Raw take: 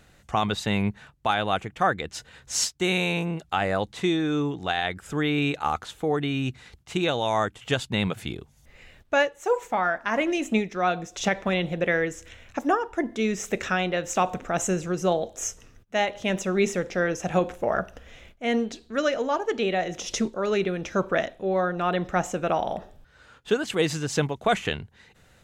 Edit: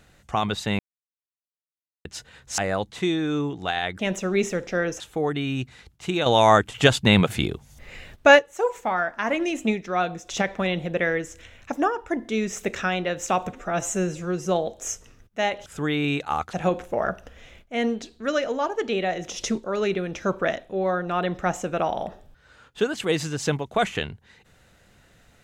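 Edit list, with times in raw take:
0.79–2.05 s: mute
2.58–3.59 s: delete
5.00–5.87 s: swap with 16.22–17.23 s
7.13–9.26 s: gain +8.5 dB
14.40–15.02 s: stretch 1.5×

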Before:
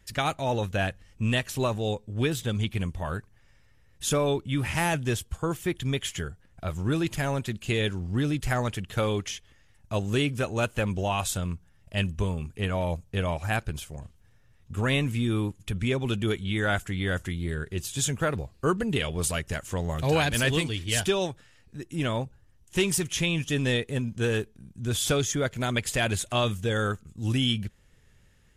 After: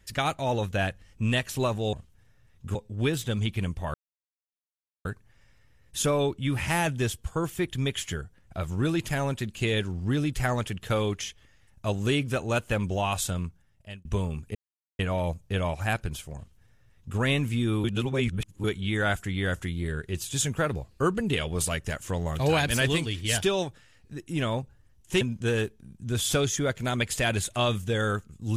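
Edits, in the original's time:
3.12 s: insert silence 1.11 s
11.46–12.12 s: fade out
12.62 s: insert silence 0.44 s
13.99–14.81 s: copy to 1.93 s
15.47–16.27 s: reverse
22.84–23.97 s: delete

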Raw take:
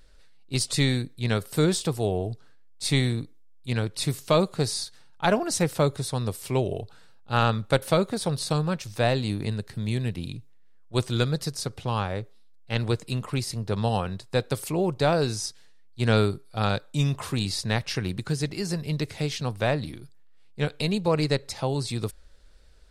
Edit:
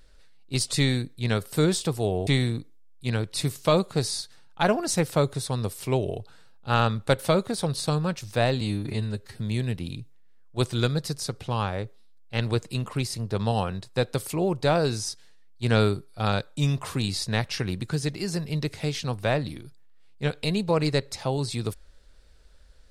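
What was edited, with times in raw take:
2.27–2.90 s: delete
9.24–9.76 s: stretch 1.5×

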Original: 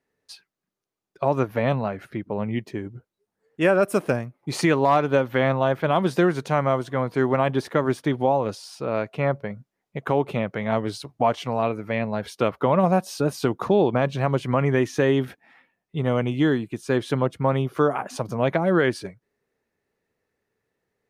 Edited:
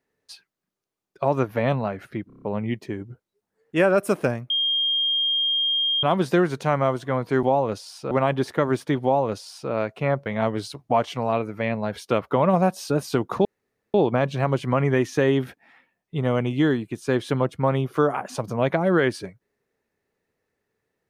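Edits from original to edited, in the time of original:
2.27 s: stutter 0.03 s, 6 plays
4.35–5.88 s: bleep 3.22 kHz -19.5 dBFS
8.20–8.88 s: copy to 7.28 s
9.43–10.56 s: delete
13.75 s: insert room tone 0.49 s

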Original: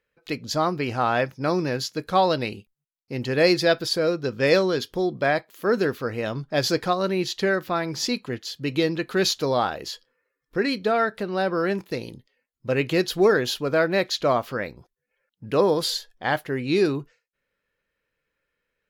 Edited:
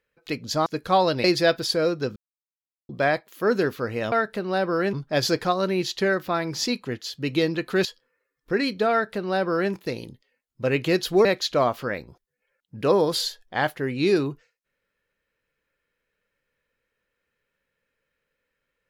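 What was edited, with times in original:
0.66–1.89 s: delete
2.47–3.46 s: delete
4.38–5.11 s: mute
9.26–9.90 s: delete
10.96–11.77 s: copy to 6.34 s
13.30–13.94 s: delete

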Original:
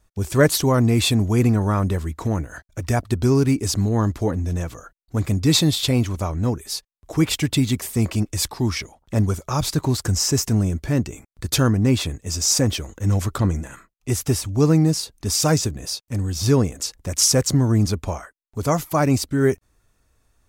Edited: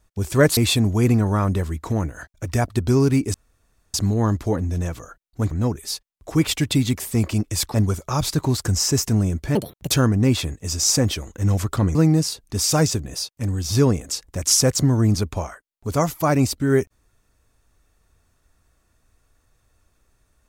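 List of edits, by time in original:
0.57–0.92 s: delete
3.69 s: insert room tone 0.60 s
5.26–6.33 s: delete
8.56–9.14 s: delete
10.95–11.53 s: speed 161%
13.57–14.66 s: delete

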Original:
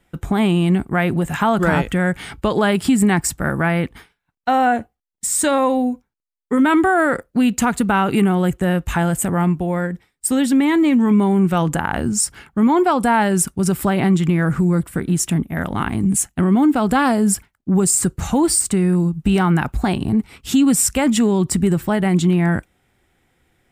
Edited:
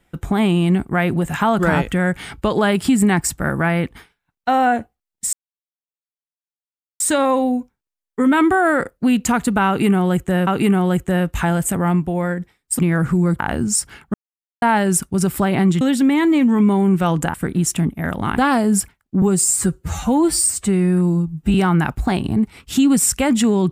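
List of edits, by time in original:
5.33 s: insert silence 1.67 s
8.00–8.80 s: loop, 2 plays
10.32–11.85 s: swap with 14.26–14.87 s
12.59–13.07 s: mute
15.91–16.92 s: delete
17.76–19.31 s: stretch 1.5×

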